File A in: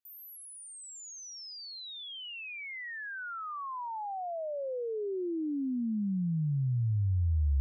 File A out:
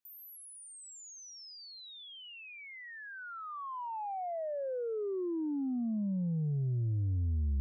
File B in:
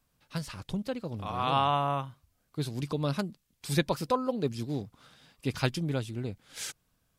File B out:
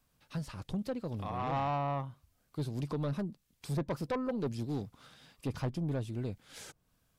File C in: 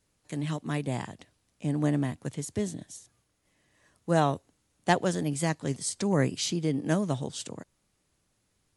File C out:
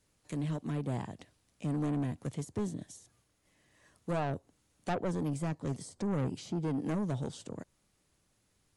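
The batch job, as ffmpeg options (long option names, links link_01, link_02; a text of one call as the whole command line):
ffmpeg -i in.wav -filter_complex "[0:a]acrossover=split=1100[link_01][link_02];[link_02]acompressor=threshold=-49dB:ratio=6[link_03];[link_01][link_03]amix=inputs=2:normalize=0,asoftclip=type=tanh:threshold=-28dB" out.wav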